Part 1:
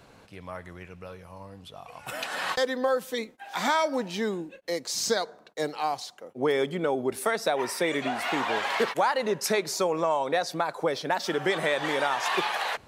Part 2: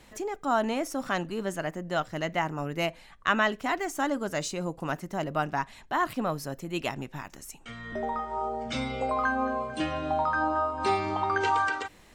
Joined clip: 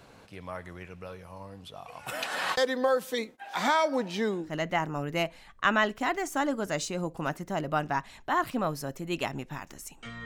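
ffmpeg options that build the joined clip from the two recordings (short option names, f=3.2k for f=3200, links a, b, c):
-filter_complex "[0:a]asettb=1/sr,asplit=3[a][b][c];[a]atrim=end=3.384[d];[b]atrim=start=3.38:end=4.55,asetpts=PTS-STARTPTS,afade=t=in:d=0.004:c=qsin,afade=t=out:st=1.166:d=0.004:c=qsin,highshelf=f=4.8k:g=-4.5[e];[c]atrim=start=4.546[f];[d][e]acrossfade=d=0.004:c1=hsin:c2=qsin[g];[g][f]acrossfade=d=0.004:c1=qsin:c2=hsin,apad=whole_dur=10.25,atrim=end=10.25,atrim=end=4.55,asetpts=PTS-STARTPTS[h];[1:a]atrim=start=2.04:end=7.88,asetpts=PTS-STARTPTS[i];[h][i]acrossfade=d=0.14:c1=tri:c2=tri"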